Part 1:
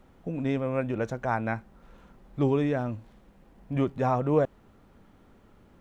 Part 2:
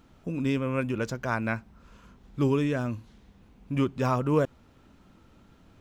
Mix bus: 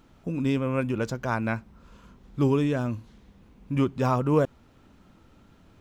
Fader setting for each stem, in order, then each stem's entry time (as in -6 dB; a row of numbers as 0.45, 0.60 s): -11.0, +0.5 dB; 0.00, 0.00 s